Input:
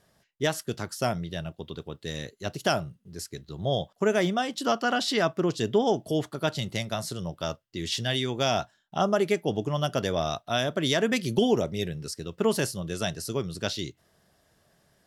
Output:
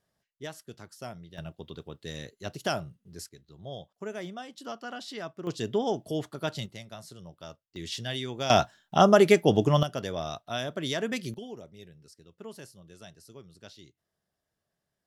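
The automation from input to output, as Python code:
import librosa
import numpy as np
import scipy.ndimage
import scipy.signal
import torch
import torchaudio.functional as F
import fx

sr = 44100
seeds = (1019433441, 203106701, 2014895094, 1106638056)

y = fx.gain(x, sr, db=fx.steps((0.0, -13.5), (1.38, -4.5), (3.29, -13.5), (5.47, -4.5), (6.66, -13.0), (7.76, -6.0), (8.5, 6.0), (9.83, -6.0), (11.34, -19.0)))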